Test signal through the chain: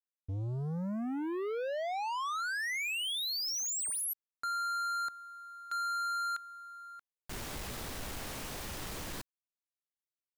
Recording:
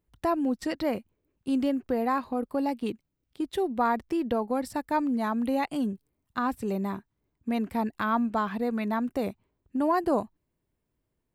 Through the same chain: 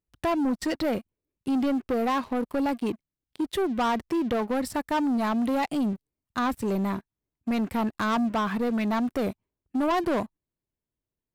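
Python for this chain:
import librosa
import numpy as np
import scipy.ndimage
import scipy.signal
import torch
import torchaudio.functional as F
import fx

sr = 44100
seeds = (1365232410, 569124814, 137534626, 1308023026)

y = fx.leveller(x, sr, passes=3)
y = F.gain(torch.from_numpy(y), -5.5).numpy()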